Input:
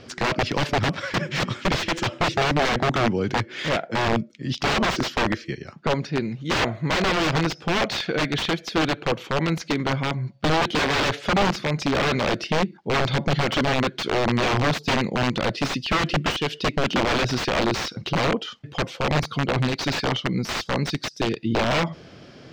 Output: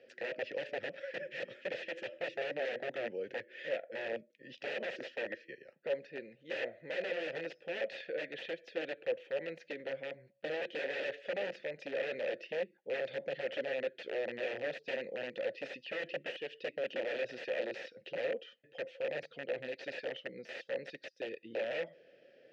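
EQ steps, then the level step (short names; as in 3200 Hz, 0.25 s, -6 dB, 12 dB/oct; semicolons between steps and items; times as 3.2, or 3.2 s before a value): vowel filter e; HPF 140 Hz 6 dB/oct; -4.5 dB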